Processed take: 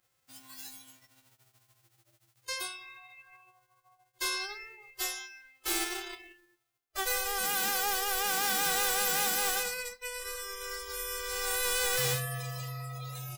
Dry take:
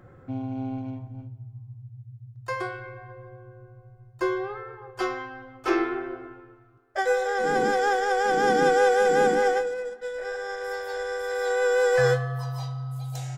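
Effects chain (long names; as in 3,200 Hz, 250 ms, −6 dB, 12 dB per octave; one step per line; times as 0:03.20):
spectral envelope flattened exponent 0.1
gain into a clipping stage and back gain 21 dB
noise reduction from a noise print of the clip's start 20 dB
level −5.5 dB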